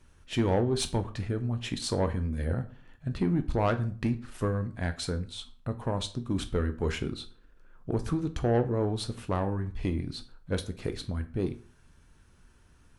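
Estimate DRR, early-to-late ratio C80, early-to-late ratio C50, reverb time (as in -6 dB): 9.0 dB, 20.0 dB, 15.5 dB, 0.45 s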